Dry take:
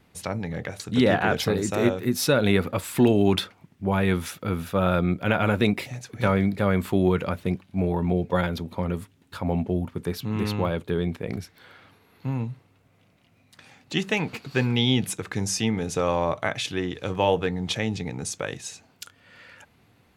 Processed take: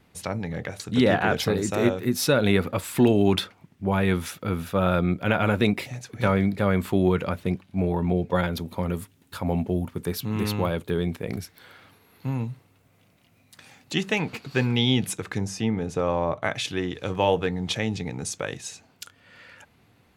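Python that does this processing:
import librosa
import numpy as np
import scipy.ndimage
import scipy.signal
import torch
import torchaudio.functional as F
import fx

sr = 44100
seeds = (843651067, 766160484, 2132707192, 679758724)

y = fx.high_shelf(x, sr, hz=8100.0, db=10.5, at=(8.56, 13.95))
y = fx.high_shelf(y, sr, hz=2300.0, db=-10.5, at=(15.38, 16.44))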